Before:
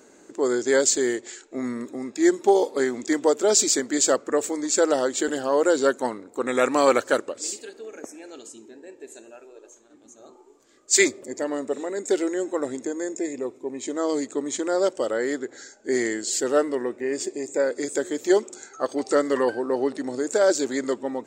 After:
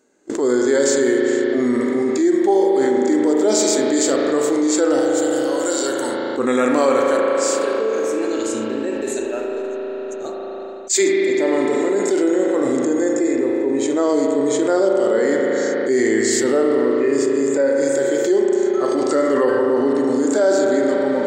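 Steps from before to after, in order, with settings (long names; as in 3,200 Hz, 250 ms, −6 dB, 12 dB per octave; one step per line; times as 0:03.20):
0:05.00–0:06.30: first-order pre-emphasis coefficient 0.9
noise gate −45 dBFS, range −47 dB
harmonic and percussive parts rebalanced percussive −11 dB
spring reverb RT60 2.8 s, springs 36 ms, chirp 50 ms, DRR 1 dB
envelope flattener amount 70%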